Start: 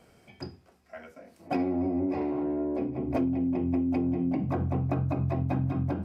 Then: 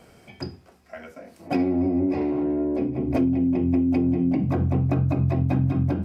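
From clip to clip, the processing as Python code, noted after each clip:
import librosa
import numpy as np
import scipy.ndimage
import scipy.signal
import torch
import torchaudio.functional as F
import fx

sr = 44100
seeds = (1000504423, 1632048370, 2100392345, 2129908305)

y = fx.dynamic_eq(x, sr, hz=930.0, q=0.75, threshold_db=-46.0, ratio=4.0, max_db=-6)
y = y * librosa.db_to_amplitude(7.0)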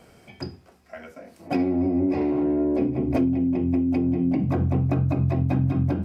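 y = fx.rider(x, sr, range_db=10, speed_s=0.5)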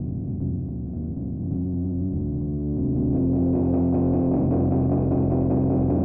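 y = fx.bin_compress(x, sr, power=0.2)
y = fx.tube_stage(y, sr, drive_db=16.0, bias=0.4)
y = fx.filter_sweep_lowpass(y, sr, from_hz=180.0, to_hz=570.0, start_s=2.55, end_s=3.75, q=0.88)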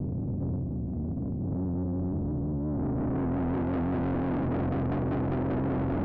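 y = 10.0 ** (-26.5 / 20.0) * np.tanh(x / 10.0 ** (-26.5 / 20.0))
y = fx.vibrato(y, sr, rate_hz=5.7, depth_cents=67.0)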